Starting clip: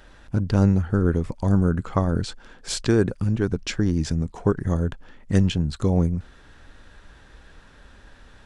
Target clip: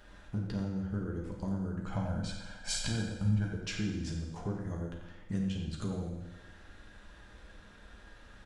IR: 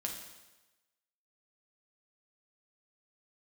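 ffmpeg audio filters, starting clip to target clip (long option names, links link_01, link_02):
-filter_complex "[0:a]acompressor=threshold=-27dB:ratio=10,asettb=1/sr,asplit=3[link_01][link_02][link_03];[link_01]atrim=end=1.864[link_04];[link_02]atrim=start=1.86:end=3.49,asetpts=PTS-STARTPTS,afade=type=in:duration=0.004:curve=qsin,afade=type=out:start_time=1.626:duration=0.004:curve=qsin,aecho=1:1:1.3:0.91,atrim=end_sample=71883[link_05];[link_03]atrim=start=3.486[link_06];[link_04][link_05]acrossfade=duration=0.004:curve1=hsin:curve2=qsin[link_07];[link_07][link_06]acrossfade=duration=0.004:curve1=qsin:curve2=hsin,asplit=2[link_08][link_09];[link_09]adelay=90,highpass=300,lowpass=3400,asoftclip=type=hard:threshold=-24.5dB,volume=-7dB[link_10];[link_08][link_10]amix=inputs=2:normalize=0[link_11];[1:a]atrim=start_sample=2205[link_12];[link_11][link_12]afir=irnorm=-1:irlink=0,volume=-5.5dB"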